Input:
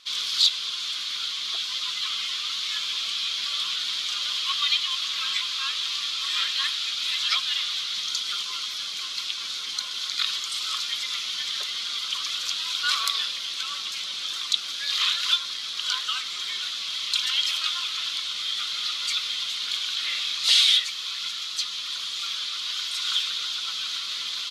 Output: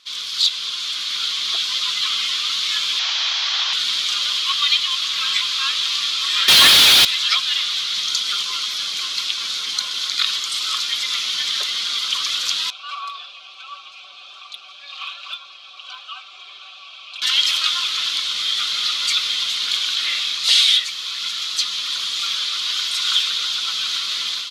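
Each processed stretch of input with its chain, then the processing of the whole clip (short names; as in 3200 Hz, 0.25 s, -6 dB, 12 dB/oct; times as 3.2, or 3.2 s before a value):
2.99–3.73 delta modulation 32 kbps, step -27.5 dBFS + HPF 830 Hz 24 dB/oct
6.48–7.05 comb 7.1 ms, depth 71% + overdrive pedal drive 33 dB, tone 6900 Hz, clips at -10 dBFS
12.7–17.22 vowel filter a + hard clip -29.5 dBFS + comb 5.2 ms, depth 72%
whole clip: HPF 55 Hz; AGC gain up to 7.5 dB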